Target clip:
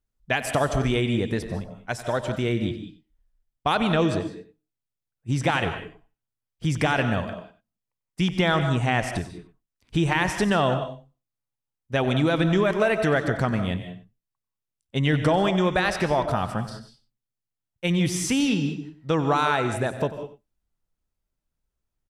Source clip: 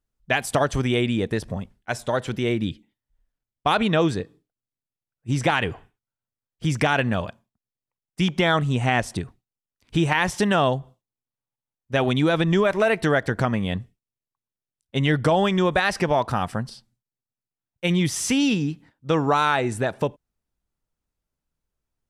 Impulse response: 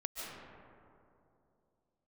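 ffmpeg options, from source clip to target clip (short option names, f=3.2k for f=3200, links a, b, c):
-filter_complex "[0:a]asplit=2[a][b];[b]adelay=93.29,volume=-14dB,highshelf=f=4k:g=-2.1[c];[a][c]amix=inputs=2:normalize=0,asplit=2[d][e];[1:a]atrim=start_sample=2205,afade=t=out:st=0.26:d=0.01,atrim=end_sample=11907,lowshelf=f=140:g=8[f];[e][f]afir=irnorm=-1:irlink=0,volume=-1dB[g];[d][g]amix=inputs=2:normalize=0,volume=-6.5dB"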